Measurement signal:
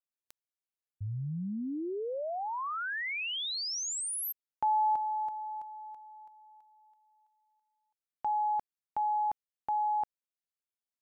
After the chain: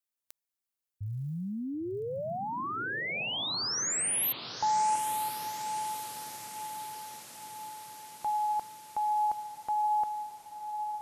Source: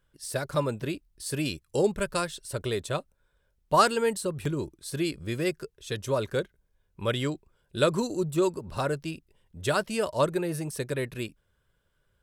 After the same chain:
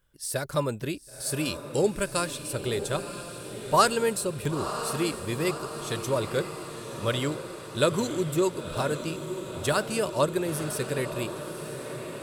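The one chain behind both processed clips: high shelf 7000 Hz +7.5 dB; diffused feedback echo 0.987 s, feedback 65%, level -9.5 dB

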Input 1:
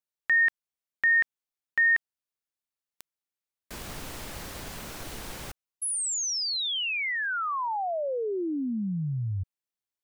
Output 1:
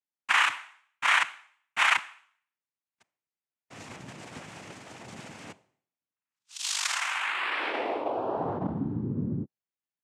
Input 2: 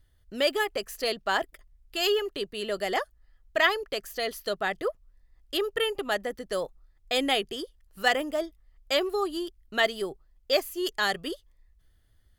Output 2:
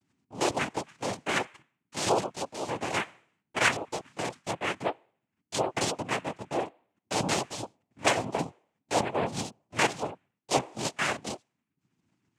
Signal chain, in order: monotone LPC vocoder at 8 kHz 140 Hz; de-hum 302.2 Hz, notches 9; noise vocoder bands 4; gain -1 dB

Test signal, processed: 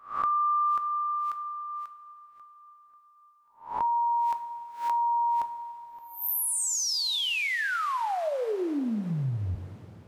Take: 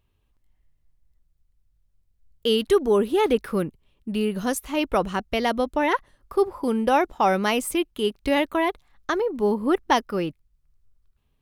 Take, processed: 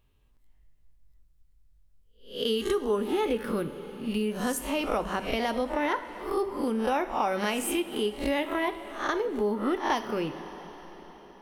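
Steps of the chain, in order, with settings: spectral swells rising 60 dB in 0.37 s; two-slope reverb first 0.44 s, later 4.9 s, from -18 dB, DRR 8.5 dB; compressor 2.5:1, threshold -28 dBFS

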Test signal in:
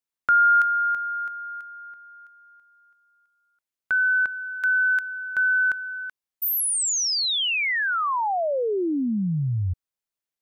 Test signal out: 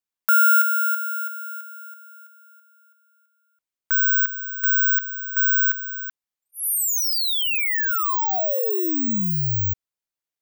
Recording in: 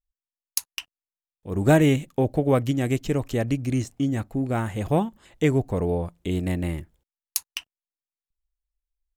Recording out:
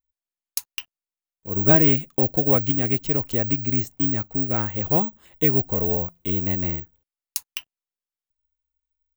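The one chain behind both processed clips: careless resampling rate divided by 2×, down filtered, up zero stuff; gain -1.5 dB

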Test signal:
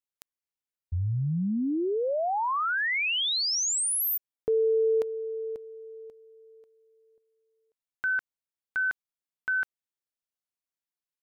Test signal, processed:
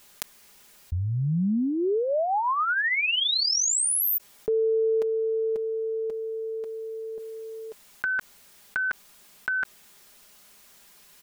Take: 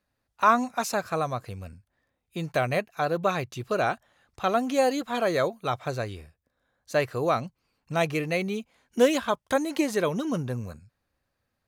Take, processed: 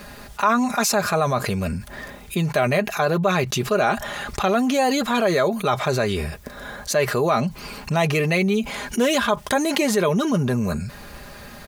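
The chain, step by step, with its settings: comb 4.9 ms, depth 56%; fast leveller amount 70%; gain -2 dB

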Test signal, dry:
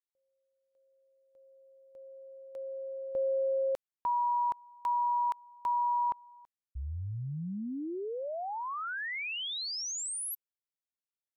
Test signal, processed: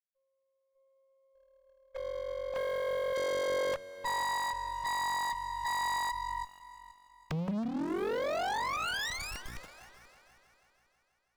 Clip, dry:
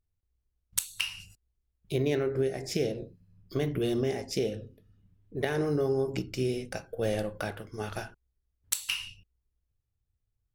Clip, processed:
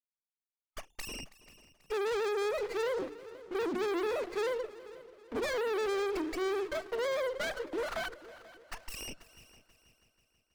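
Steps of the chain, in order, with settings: sine-wave speech; spectral gate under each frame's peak -30 dB strong; dynamic EQ 1600 Hz, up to +6 dB, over -43 dBFS, Q 1.6; sample leveller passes 3; in parallel at +0.5 dB: compressor, threshold -31 dBFS; on the sum: soft clip -29.5 dBFS; notches 60/120/180/240/300/360 Hz; multi-head echo 0.162 s, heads second and third, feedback 44%, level -19 dB; running maximum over 9 samples; gain -1.5 dB

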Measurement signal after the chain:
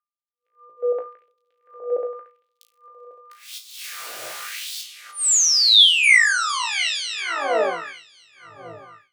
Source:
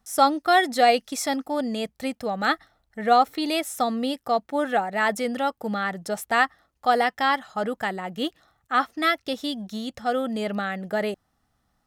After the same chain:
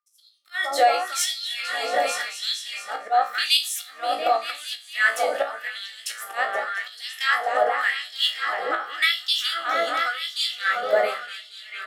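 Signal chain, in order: repeats that get brighter 0.229 s, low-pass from 200 Hz, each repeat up 2 oct, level 0 dB; auto swell 0.229 s; in parallel at -3 dB: limiter -16 dBFS; on the sum: bell 230 Hz -14.5 dB 0.43 oct; resonator 56 Hz, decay 0.33 s, harmonics all, mix 90%; crackle 54/s -56 dBFS; whine 1200 Hz -48 dBFS; compressor 4:1, threshold -29 dBFS; bell 900 Hz -13 dB 0.71 oct; LFO high-pass sine 0.89 Hz 630–3800 Hz; AGC gain up to 16.5 dB; three-band expander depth 70%; gain -5.5 dB

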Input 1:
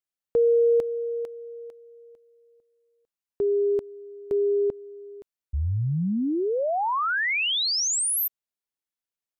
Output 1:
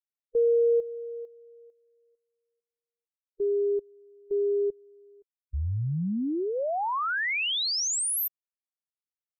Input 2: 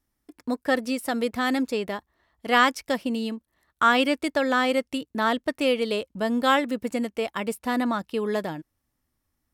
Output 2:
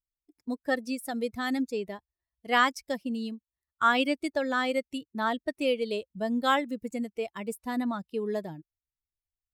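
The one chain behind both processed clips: per-bin expansion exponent 1.5; gain -2.5 dB

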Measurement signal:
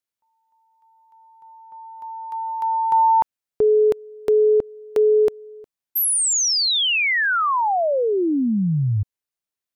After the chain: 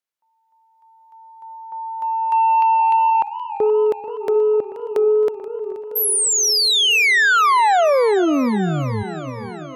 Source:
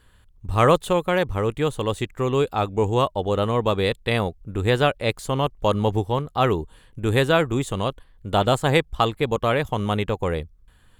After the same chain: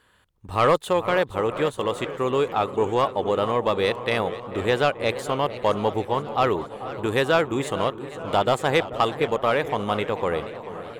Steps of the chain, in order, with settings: recorder AGC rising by 5.1 dB/s; HPF 470 Hz 6 dB/oct; high shelf 3100 Hz -7 dB; in parallel at -11 dB: sine folder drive 8 dB, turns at -5.5 dBFS; on the sum: dark delay 0.437 s, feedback 67%, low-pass 1500 Hz, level -14.5 dB; warbling echo 0.474 s, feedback 60%, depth 175 cents, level -15.5 dB; gain -3.5 dB

